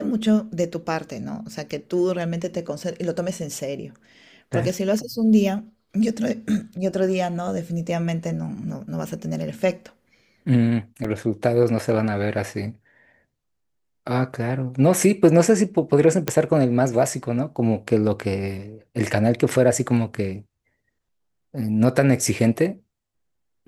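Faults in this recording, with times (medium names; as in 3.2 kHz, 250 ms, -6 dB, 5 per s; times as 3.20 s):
11.04 s: dropout 4.9 ms
16.28 s: pop -6 dBFS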